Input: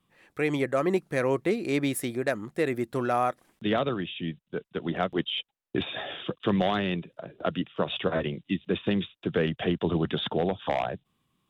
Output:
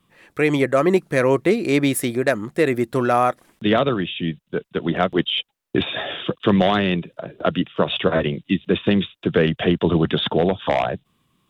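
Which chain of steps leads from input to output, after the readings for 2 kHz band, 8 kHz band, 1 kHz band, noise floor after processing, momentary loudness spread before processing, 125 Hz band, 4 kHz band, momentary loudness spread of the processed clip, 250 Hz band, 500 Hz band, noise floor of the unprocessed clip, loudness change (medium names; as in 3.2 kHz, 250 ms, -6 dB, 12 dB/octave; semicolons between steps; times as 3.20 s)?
+8.5 dB, +8.5 dB, +7.5 dB, -69 dBFS, 8 LU, +8.5 dB, +8.5 dB, 8 LU, +8.5 dB, +8.5 dB, -78 dBFS, +8.5 dB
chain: band-stop 780 Hz, Q 16; trim +8.5 dB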